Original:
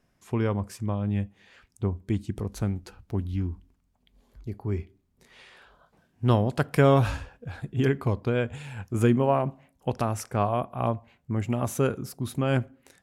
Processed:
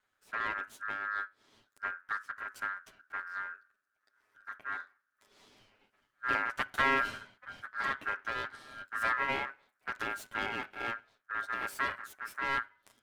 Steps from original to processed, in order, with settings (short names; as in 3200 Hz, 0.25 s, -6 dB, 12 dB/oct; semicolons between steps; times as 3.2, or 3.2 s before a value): minimum comb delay 9.3 ms; ring modulator 1500 Hz; small resonant body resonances 270/390/580 Hz, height 9 dB, ringing for 0.1 s; gain -6 dB